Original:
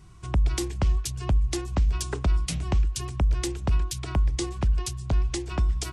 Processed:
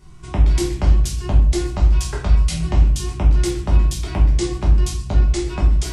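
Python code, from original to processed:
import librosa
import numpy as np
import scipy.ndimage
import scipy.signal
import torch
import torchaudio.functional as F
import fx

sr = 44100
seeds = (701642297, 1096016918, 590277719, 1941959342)

y = fx.peak_eq(x, sr, hz=310.0, db=-7.5, octaves=0.91, at=(1.74, 2.52))
y = fx.room_shoebox(y, sr, seeds[0], volume_m3=100.0, walls='mixed', distance_m=1.3)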